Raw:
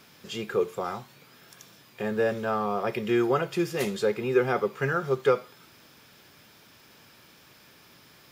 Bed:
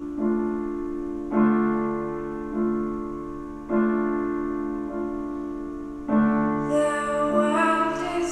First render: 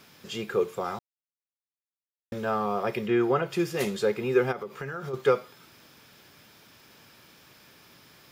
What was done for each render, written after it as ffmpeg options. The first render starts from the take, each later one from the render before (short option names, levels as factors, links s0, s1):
-filter_complex "[0:a]asettb=1/sr,asplit=3[s0][s1][s2];[s0]atrim=end=3.064[s3];[s1]atrim=start=3.06:end=3.5,asetpts=PTS-STARTPTS,afade=t=in:d=0.004:c=qsin,afade=t=out:st=0.436:d=0.004:c=qsin,acrossover=split=3400[s4][s5];[s5]acompressor=threshold=0.00112:ratio=4:attack=1:release=60[s6];[s4][s6]amix=inputs=2:normalize=0[s7];[s2]atrim=start=3.496[s8];[s3][s7]acrossfade=d=0.004:c1=hsin:c2=qsin[s9];[s9][s8]acrossfade=d=0.004:c1=qsin:c2=hsin,asplit=3[s10][s11][s12];[s10]afade=t=out:st=4.51:d=0.02[s13];[s11]acompressor=threshold=0.0282:ratio=10:attack=3.2:release=140:knee=1:detection=peak,afade=t=in:st=4.51:d=0.02,afade=t=out:st=5.13:d=0.02[s14];[s12]afade=t=in:st=5.13:d=0.02[s15];[s13][s14][s15]amix=inputs=3:normalize=0,asplit=3[s16][s17][s18];[s16]atrim=end=0.99,asetpts=PTS-STARTPTS,afade=t=out:st=0.986:d=0.004:c=hsin[s19];[s17]atrim=start=0.99:end=2.32,asetpts=PTS-STARTPTS,volume=0[s20];[s18]atrim=start=2.32,asetpts=PTS-STARTPTS,afade=t=in:d=0.004:c=hsin[s21];[s19][s20][s21]concat=n=3:v=0:a=1"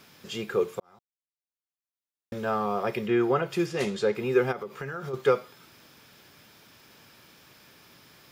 -filter_complex "[0:a]asettb=1/sr,asplit=3[s0][s1][s2];[s0]atrim=end=3.664[s3];[s1]atrim=start=3.66:end=4.15,asetpts=PTS-STARTPTS,afade=t=in:d=0.004:c=qsin,afade=t=out:st=0.486:d=0.004:c=qsin,lowpass=7500[s4];[s2]atrim=start=4.146[s5];[s3][s4]acrossfade=d=0.004:c1=hsin:c2=qsin[s6];[s6][s5]acrossfade=d=0.004:c1=qsin:c2=hsin,asplit=2[s7][s8];[s7]atrim=end=0.8,asetpts=PTS-STARTPTS,afade=t=out:st=0.796:d=0.004:c=hsin[s9];[s8]atrim=start=0.8,asetpts=PTS-STARTPTS,afade=t=in:d=1.67[s10];[s9][s10]concat=n=2:v=0:a=1"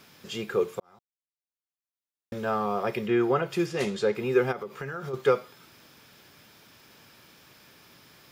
-af anull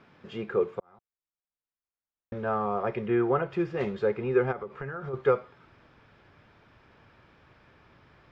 -af "lowpass=1800,asubboost=boost=4:cutoff=89"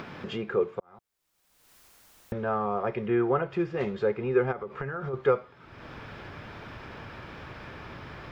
-af "acompressor=mode=upward:threshold=0.0398:ratio=2.5"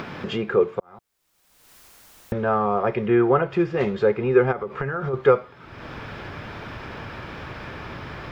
-af "volume=2.24"